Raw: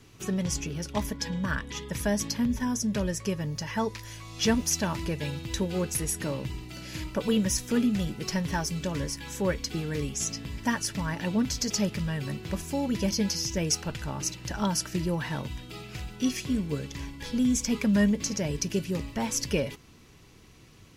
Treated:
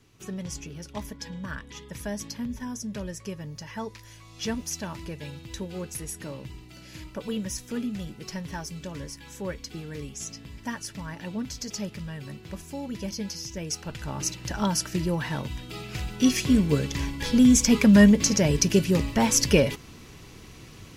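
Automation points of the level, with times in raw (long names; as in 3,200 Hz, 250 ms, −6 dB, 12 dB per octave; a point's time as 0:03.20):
0:13.66 −6 dB
0:14.21 +2 dB
0:15.47 +2 dB
0:16.54 +8 dB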